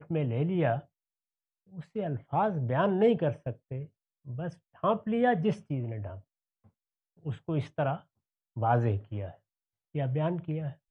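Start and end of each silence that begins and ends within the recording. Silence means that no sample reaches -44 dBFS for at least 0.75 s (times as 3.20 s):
0.81–1.74 s
6.20–7.25 s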